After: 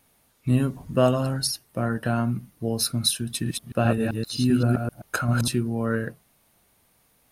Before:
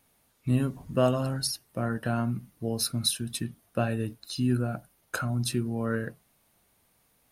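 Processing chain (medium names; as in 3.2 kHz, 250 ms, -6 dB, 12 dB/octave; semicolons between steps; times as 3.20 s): 3.33–5.48 s: chunks repeated in reverse 130 ms, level -1.5 dB; trim +4 dB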